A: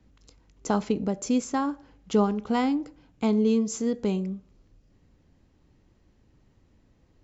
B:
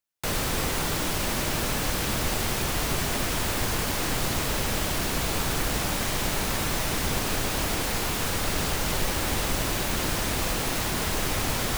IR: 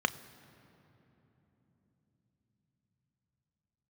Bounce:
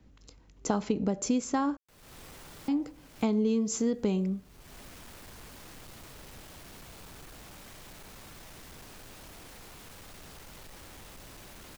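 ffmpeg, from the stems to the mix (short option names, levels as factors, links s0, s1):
-filter_complex "[0:a]acompressor=threshold=0.0562:ratio=6,volume=1.19,asplit=3[s0][s1][s2];[s0]atrim=end=1.77,asetpts=PTS-STARTPTS,afade=t=out:st=1.766:d=0.004:c=hsin[s3];[s1]atrim=start=1.77:end=2.68,asetpts=PTS-STARTPTS,volume=0[s4];[s2]atrim=start=2.68,asetpts=PTS-STARTPTS,afade=t=in:d=0.004:c=hsin[s5];[s3][s4][s5]concat=n=3:v=0:a=1,asplit=2[s6][s7];[1:a]asoftclip=type=tanh:threshold=0.0422,adelay=1650,volume=0.133[s8];[s7]apad=whole_len=592063[s9];[s8][s9]sidechaincompress=threshold=0.00355:ratio=10:attack=16:release=304[s10];[s6][s10]amix=inputs=2:normalize=0"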